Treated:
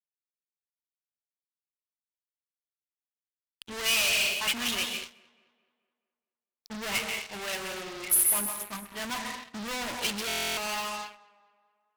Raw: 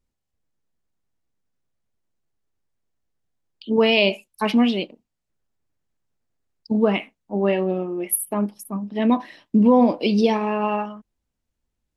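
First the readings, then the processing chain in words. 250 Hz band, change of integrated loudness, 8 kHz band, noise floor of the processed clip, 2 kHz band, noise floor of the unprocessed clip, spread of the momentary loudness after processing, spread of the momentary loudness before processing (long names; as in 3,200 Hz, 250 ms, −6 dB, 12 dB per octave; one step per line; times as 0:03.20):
−22.0 dB, −7.0 dB, +4.5 dB, below −85 dBFS, −1.0 dB, −80 dBFS, 15 LU, 11 LU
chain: adaptive Wiener filter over 9 samples
parametric band 180 Hz −14 dB 2.7 octaves
dense smooth reverb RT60 0.85 s, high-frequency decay 0.95×, pre-delay 120 ms, DRR 9 dB
fuzz pedal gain 41 dB, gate −46 dBFS
guitar amp tone stack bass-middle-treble 5-5-5
on a send: tape delay 215 ms, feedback 54%, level −14.5 dB, low-pass 2,800 Hz
on the sum: buffer that repeats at 0:10.27, samples 1,024, times 12
expander for the loud parts 1.5 to 1, over −45 dBFS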